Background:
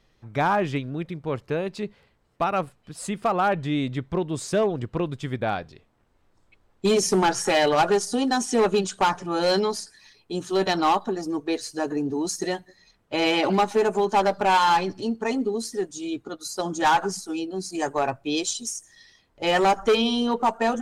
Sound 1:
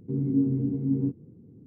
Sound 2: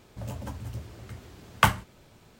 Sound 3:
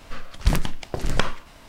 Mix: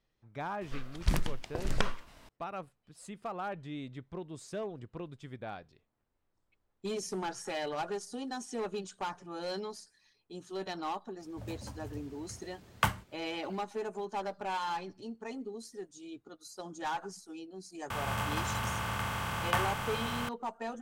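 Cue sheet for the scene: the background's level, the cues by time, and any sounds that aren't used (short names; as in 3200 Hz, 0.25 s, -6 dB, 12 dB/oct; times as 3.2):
background -16 dB
0.61 add 3 -8.5 dB
11.2 add 2 -8 dB
17.9 add 2 -13 dB + per-bin compression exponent 0.2
not used: 1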